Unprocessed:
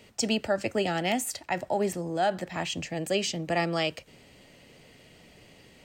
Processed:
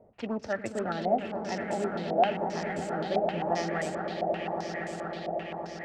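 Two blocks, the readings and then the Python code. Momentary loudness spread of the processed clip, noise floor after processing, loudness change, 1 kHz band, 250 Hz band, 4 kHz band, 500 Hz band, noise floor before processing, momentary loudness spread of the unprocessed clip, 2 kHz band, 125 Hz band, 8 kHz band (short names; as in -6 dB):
8 LU, -44 dBFS, -2.5 dB, +2.5 dB, -1.5 dB, -9.5 dB, +0.5 dB, -56 dBFS, 5 LU, -3.0 dB, -2.0 dB, -11.5 dB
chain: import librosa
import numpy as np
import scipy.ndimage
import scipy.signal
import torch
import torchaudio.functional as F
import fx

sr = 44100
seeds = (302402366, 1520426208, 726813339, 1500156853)

y = scipy.ndimage.median_filter(x, 15, mode='constant')
y = fx.echo_swell(y, sr, ms=118, loudest=8, wet_db=-10.5)
y = fx.filter_held_lowpass(y, sr, hz=7.6, low_hz=690.0, high_hz=7900.0)
y = y * librosa.db_to_amplitude(-5.5)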